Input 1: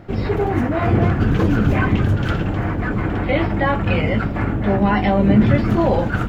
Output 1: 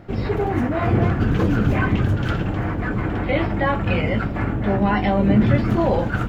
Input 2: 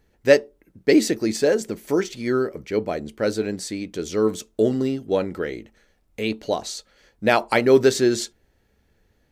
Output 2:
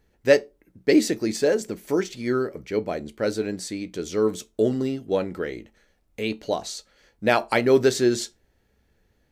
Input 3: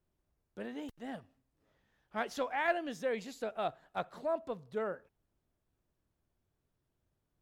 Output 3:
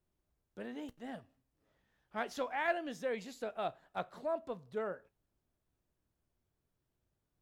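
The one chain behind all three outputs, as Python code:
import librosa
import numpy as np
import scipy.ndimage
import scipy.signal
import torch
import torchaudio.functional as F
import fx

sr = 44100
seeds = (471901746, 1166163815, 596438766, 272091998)

y = fx.comb_fb(x, sr, f0_hz=61.0, decay_s=0.19, harmonics='all', damping=0.0, mix_pct=40)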